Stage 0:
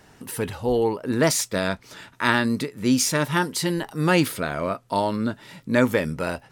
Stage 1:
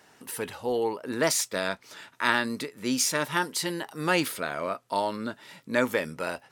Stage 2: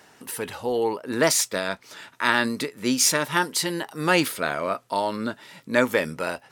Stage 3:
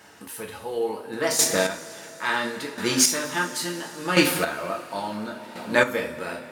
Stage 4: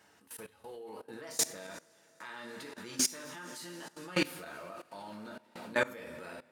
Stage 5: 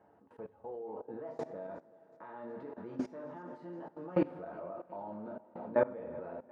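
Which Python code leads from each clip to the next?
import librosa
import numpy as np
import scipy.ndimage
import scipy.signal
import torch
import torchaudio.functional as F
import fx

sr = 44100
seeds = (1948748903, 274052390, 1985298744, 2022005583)

y1 = fx.highpass(x, sr, hz=450.0, slope=6)
y1 = y1 * 10.0 ** (-2.5 / 20.0)
y2 = fx.am_noise(y1, sr, seeds[0], hz=5.7, depth_pct=60)
y2 = y2 * 10.0 ** (8.0 / 20.0)
y3 = fx.rev_double_slope(y2, sr, seeds[1], early_s=0.32, late_s=4.6, knee_db=-19, drr_db=-2.0)
y3 = fx.chopper(y3, sr, hz=0.72, depth_pct=60, duty_pct=20)
y4 = fx.level_steps(y3, sr, step_db=19)
y4 = y4 * 10.0 ** (-7.5 / 20.0)
y5 = fx.lowpass_res(y4, sr, hz=730.0, q=1.5)
y5 = fx.echo_feedback(y5, sr, ms=366, feedback_pct=59, wet_db=-23.0)
y5 = y5 * 10.0 ** (1.0 / 20.0)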